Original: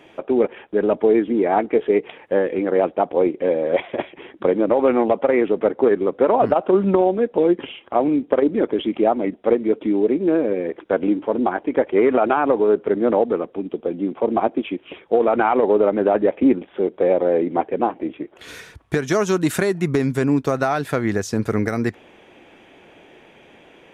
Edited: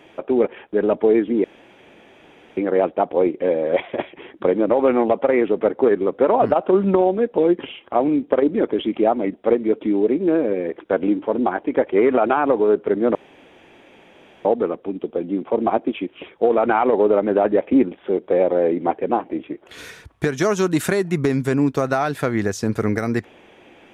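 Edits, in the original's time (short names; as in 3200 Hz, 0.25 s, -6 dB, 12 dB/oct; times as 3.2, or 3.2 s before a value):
1.44–2.57 room tone
13.15 insert room tone 1.30 s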